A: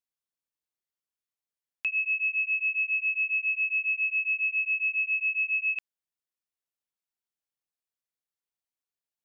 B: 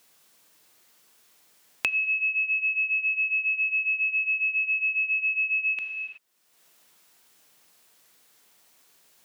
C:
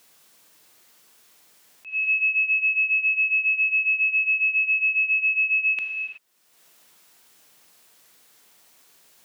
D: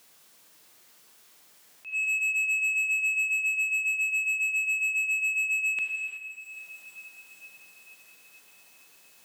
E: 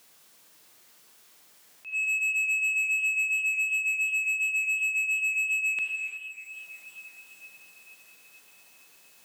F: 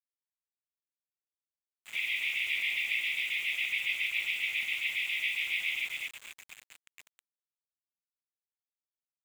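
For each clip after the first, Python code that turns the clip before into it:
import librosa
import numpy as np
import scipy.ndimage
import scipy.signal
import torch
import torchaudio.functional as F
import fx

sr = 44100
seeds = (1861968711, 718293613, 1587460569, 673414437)

y1 = fx.rev_gated(x, sr, seeds[0], gate_ms=400, shape='falling', drr_db=7.0)
y1 = fx.band_squash(y1, sr, depth_pct=100)
y1 = y1 * librosa.db_to_amplitude(1.5)
y2 = fx.auto_swell(y1, sr, attack_ms=216.0)
y2 = y2 * librosa.db_to_amplitude(4.0)
y3 = 10.0 ** (-23.0 / 20.0) * np.tanh(y2 / 10.0 ** (-23.0 / 20.0))
y3 = fx.echo_diffused(y3, sr, ms=461, feedback_pct=65, wet_db=-13.0)
y3 = y3 * librosa.db_to_amplitude(-1.0)
y4 = fx.echo_warbled(y3, sr, ms=346, feedback_pct=43, rate_hz=2.8, cents=131, wet_db=-24.0)
y5 = fx.noise_vocoder(y4, sr, seeds[1], bands=16)
y5 = fx.brickwall_bandpass(y5, sr, low_hz=1800.0, high_hz=5600.0)
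y5 = np.where(np.abs(y5) >= 10.0 ** (-36.5 / 20.0), y5, 0.0)
y5 = y5 * librosa.db_to_amplitude(-5.0)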